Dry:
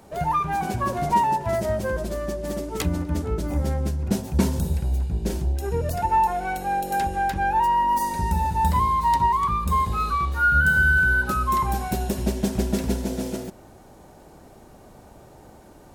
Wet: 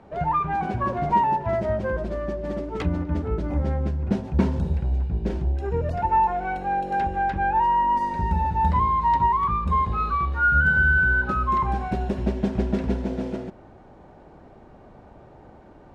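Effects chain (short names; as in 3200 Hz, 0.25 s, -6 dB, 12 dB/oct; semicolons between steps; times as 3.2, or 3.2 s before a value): LPF 2400 Hz 12 dB/oct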